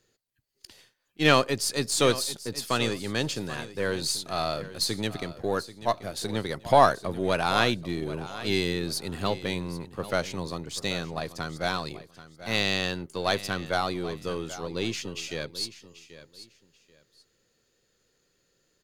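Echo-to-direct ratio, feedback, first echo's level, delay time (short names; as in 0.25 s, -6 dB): -15.0 dB, 23%, -15.0 dB, 0.785 s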